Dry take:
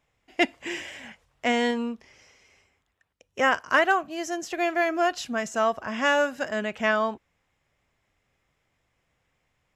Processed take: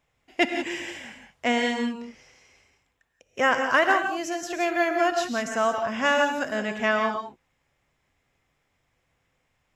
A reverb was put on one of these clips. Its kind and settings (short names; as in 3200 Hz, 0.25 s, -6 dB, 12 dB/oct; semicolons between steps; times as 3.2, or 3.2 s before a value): non-linear reverb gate 0.2 s rising, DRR 5 dB